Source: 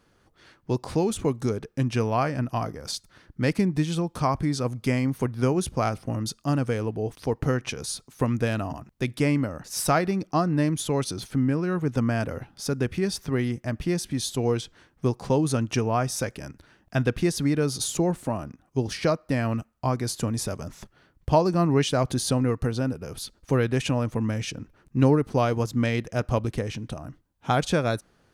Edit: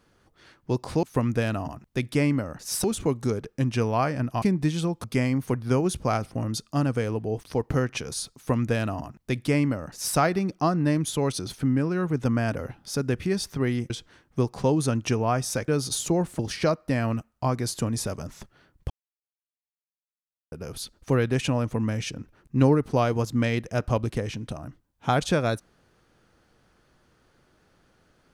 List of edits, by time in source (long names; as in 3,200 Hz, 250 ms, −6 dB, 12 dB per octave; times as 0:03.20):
0:02.61–0:03.56: remove
0:04.18–0:04.76: remove
0:08.08–0:09.89: duplicate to 0:01.03
0:13.62–0:14.56: remove
0:16.34–0:17.57: remove
0:18.28–0:18.80: remove
0:21.31–0:22.93: silence